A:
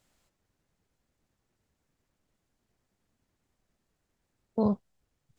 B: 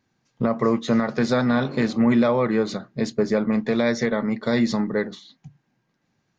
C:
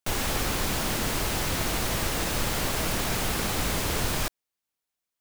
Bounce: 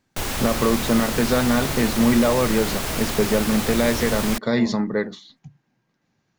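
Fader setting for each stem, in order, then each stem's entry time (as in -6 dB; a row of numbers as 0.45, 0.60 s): -6.0, +0.5, +1.5 dB; 0.00, 0.00, 0.10 s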